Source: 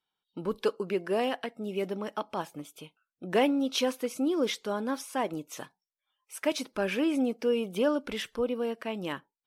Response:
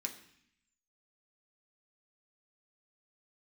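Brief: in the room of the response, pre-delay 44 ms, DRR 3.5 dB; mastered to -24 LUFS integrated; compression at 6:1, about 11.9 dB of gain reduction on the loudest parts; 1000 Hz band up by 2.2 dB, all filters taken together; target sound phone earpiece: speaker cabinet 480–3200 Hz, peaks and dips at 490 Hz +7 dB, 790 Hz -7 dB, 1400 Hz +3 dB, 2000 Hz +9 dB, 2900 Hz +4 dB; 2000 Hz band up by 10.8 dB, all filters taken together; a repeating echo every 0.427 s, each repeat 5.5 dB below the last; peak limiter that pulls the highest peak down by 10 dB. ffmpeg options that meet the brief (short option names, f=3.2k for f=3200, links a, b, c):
-filter_complex "[0:a]equalizer=f=1k:t=o:g=4.5,equalizer=f=2k:t=o:g=5,acompressor=threshold=-32dB:ratio=6,alimiter=level_in=3dB:limit=-24dB:level=0:latency=1,volume=-3dB,aecho=1:1:427|854|1281|1708|2135|2562|2989:0.531|0.281|0.149|0.079|0.0419|0.0222|0.0118,asplit=2[a][b];[1:a]atrim=start_sample=2205,adelay=44[c];[b][c]afir=irnorm=-1:irlink=0,volume=-2.5dB[d];[a][d]amix=inputs=2:normalize=0,highpass=480,equalizer=f=490:t=q:w=4:g=7,equalizer=f=790:t=q:w=4:g=-7,equalizer=f=1.4k:t=q:w=4:g=3,equalizer=f=2k:t=q:w=4:g=9,equalizer=f=2.9k:t=q:w=4:g=4,lowpass=f=3.2k:w=0.5412,lowpass=f=3.2k:w=1.3066,volume=11.5dB"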